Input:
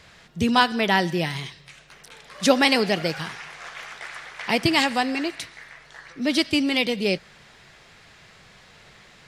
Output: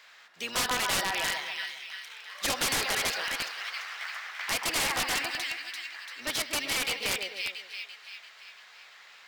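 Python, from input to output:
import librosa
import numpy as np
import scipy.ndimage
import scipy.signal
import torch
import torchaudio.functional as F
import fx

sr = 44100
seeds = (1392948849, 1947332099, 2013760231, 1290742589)

p1 = fx.octave_divider(x, sr, octaves=1, level_db=-4.0)
p2 = scipy.signal.sosfilt(scipy.signal.butter(2, 1100.0, 'highpass', fs=sr, output='sos'), p1)
p3 = fx.high_shelf(p2, sr, hz=2300.0, db=-3.0)
p4 = p3 + fx.echo_split(p3, sr, split_hz=1800.0, low_ms=133, high_ms=340, feedback_pct=52, wet_db=-5, dry=0)
p5 = (np.mod(10.0 ** (20.5 / 20.0) * p4 + 1.0, 2.0) - 1.0) / 10.0 ** (20.5 / 20.0)
y = np.interp(np.arange(len(p5)), np.arange(len(p5))[::2], p5[::2])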